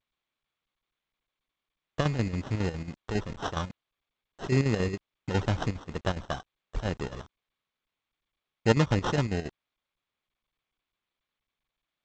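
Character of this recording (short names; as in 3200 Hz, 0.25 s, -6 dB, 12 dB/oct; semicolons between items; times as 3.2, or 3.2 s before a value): a quantiser's noise floor 8-bit, dither none; chopped level 7.3 Hz, depth 60%, duty 65%; aliases and images of a low sample rate 2300 Hz, jitter 0%; G.722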